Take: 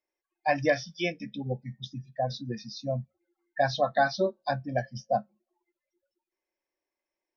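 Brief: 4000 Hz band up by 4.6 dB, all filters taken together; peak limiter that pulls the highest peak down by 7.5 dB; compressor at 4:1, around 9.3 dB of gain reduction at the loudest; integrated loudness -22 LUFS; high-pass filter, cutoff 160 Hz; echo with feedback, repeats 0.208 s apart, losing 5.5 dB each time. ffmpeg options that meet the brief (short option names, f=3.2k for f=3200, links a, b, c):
-af "highpass=160,equalizer=f=4k:t=o:g=5.5,acompressor=threshold=-30dB:ratio=4,alimiter=level_in=2.5dB:limit=-24dB:level=0:latency=1,volume=-2.5dB,aecho=1:1:208|416|624|832|1040|1248|1456:0.531|0.281|0.149|0.079|0.0419|0.0222|0.0118,volume=15.5dB"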